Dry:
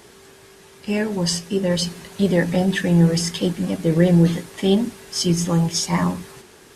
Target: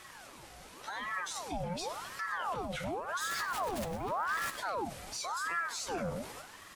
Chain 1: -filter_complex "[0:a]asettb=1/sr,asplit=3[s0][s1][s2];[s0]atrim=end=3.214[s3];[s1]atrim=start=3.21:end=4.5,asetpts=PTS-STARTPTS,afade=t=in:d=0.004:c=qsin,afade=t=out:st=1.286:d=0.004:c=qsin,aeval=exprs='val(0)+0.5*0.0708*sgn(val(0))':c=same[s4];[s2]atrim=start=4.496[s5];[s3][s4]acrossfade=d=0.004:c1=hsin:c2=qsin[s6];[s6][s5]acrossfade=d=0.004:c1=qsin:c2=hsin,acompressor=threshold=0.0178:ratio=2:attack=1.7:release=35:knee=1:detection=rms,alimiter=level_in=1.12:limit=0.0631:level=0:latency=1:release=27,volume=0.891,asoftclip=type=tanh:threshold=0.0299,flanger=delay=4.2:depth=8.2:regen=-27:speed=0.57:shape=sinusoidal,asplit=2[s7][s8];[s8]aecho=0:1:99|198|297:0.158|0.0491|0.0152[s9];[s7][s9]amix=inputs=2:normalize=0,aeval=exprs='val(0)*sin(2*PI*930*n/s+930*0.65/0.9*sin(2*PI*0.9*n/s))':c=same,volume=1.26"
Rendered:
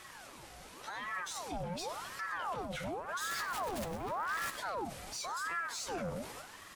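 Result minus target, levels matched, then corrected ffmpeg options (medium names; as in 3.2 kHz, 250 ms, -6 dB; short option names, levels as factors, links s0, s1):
saturation: distortion +11 dB
-filter_complex "[0:a]asettb=1/sr,asplit=3[s0][s1][s2];[s0]atrim=end=3.214[s3];[s1]atrim=start=3.21:end=4.5,asetpts=PTS-STARTPTS,afade=t=in:d=0.004:c=qsin,afade=t=out:st=1.286:d=0.004:c=qsin,aeval=exprs='val(0)+0.5*0.0708*sgn(val(0))':c=same[s4];[s2]atrim=start=4.496[s5];[s3][s4]acrossfade=d=0.004:c1=hsin:c2=qsin[s6];[s6][s5]acrossfade=d=0.004:c1=qsin:c2=hsin,acompressor=threshold=0.0178:ratio=2:attack=1.7:release=35:knee=1:detection=rms,alimiter=level_in=1.12:limit=0.0631:level=0:latency=1:release=27,volume=0.891,asoftclip=type=tanh:threshold=0.0708,flanger=delay=4.2:depth=8.2:regen=-27:speed=0.57:shape=sinusoidal,asplit=2[s7][s8];[s8]aecho=0:1:99|198|297:0.158|0.0491|0.0152[s9];[s7][s9]amix=inputs=2:normalize=0,aeval=exprs='val(0)*sin(2*PI*930*n/s+930*0.65/0.9*sin(2*PI*0.9*n/s))':c=same,volume=1.26"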